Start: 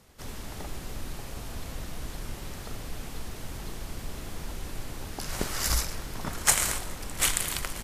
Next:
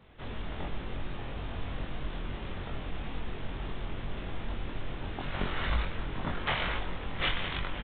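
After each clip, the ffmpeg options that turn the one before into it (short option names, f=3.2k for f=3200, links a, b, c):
-filter_complex "[0:a]aresample=8000,asoftclip=type=tanh:threshold=-23dB,aresample=44100,asplit=2[a][b];[b]adelay=22,volume=-2.5dB[c];[a][c]amix=inputs=2:normalize=0"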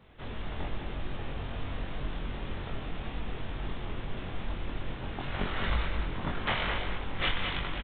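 -af "aecho=1:1:210:0.447"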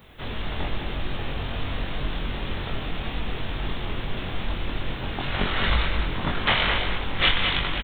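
-af "aemphasis=mode=production:type=75kf,volume=6.5dB"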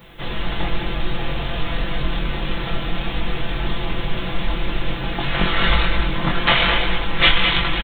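-af "aecho=1:1:5.9:0.73,volume=4dB"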